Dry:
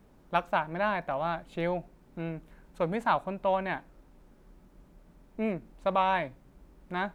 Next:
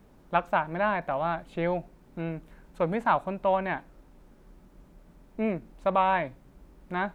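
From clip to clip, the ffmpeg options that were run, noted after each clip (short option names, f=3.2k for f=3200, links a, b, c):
-filter_complex "[0:a]acrossover=split=3200[a][b];[b]acompressor=threshold=-59dB:ratio=4:attack=1:release=60[c];[a][c]amix=inputs=2:normalize=0,volume=2.5dB"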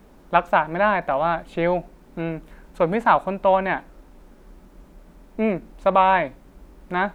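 -af "equalizer=f=120:t=o:w=0.83:g=-8,volume=7.5dB"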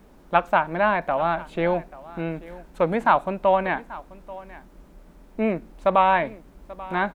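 -af "aecho=1:1:836:0.112,volume=-1.5dB"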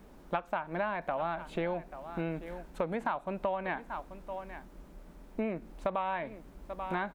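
-af "acompressor=threshold=-27dB:ratio=8,volume=-2.5dB"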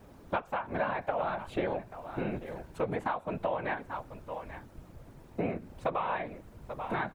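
-af "afftfilt=real='hypot(re,im)*cos(2*PI*random(0))':imag='hypot(re,im)*sin(2*PI*random(1))':win_size=512:overlap=0.75,volume=7dB"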